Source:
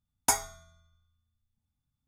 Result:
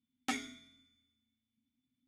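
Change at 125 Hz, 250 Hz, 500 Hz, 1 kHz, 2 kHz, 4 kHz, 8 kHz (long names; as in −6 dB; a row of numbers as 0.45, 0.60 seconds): −13.5, +4.5, −11.5, −11.0, −3.0, −5.0, −19.5 decibels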